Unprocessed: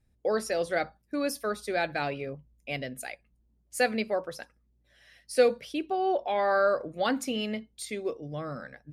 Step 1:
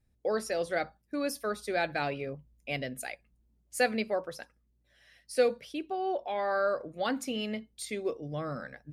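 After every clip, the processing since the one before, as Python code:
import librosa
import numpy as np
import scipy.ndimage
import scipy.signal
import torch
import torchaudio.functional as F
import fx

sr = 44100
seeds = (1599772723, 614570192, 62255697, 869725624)

y = fx.rider(x, sr, range_db=4, speed_s=2.0)
y = F.gain(torch.from_numpy(y), -3.5).numpy()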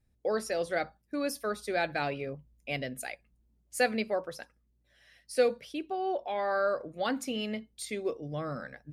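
y = x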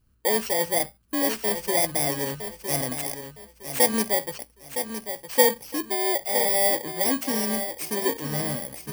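y = fx.bit_reversed(x, sr, seeds[0], block=32)
y = fx.echo_feedback(y, sr, ms=962, feedback_pct=28, wet_db=-9)
y = F.gain(torch.from_numpy(y), 7.0).numpy()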